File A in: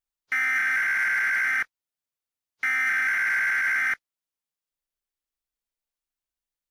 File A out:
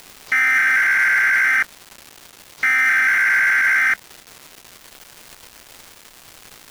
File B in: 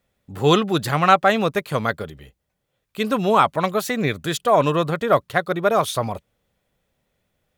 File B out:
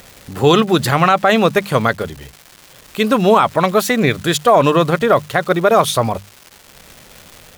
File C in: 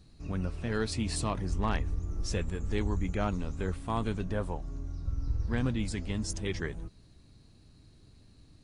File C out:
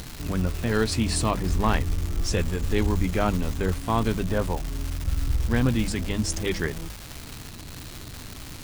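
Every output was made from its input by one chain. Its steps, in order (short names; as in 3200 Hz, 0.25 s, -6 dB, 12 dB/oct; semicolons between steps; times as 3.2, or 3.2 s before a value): notches 50/100/150/200 Hz; upward compressor, threshold -38 dBFS; crackle 560/s -36 dBFS; maximiser +9 dB; gain -1 dB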